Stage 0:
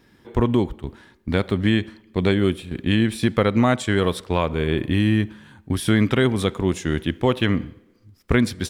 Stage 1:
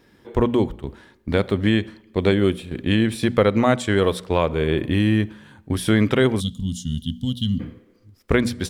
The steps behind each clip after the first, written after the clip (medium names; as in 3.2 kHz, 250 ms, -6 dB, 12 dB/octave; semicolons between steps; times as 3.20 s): time-frequency box 6.40–7.60 s, 260–2800 Hz -30 dB; peaking EQ 510 Hz +4 dB 0.78 oct; hum notches 60/120/180/240 Hz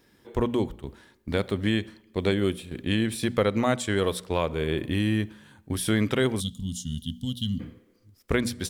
treble shelf 4.8 kHz +9 dB; trim -6.5 dB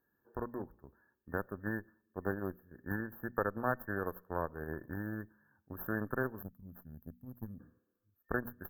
tilt shelf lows -6 dB, about 1.4 kHz; Chebyshev shaper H 2 -12 dB, 7 -20 dB, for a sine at -9.5 dBFS; FFT band-reject 1.8–12 kHz; trim -4.5 dB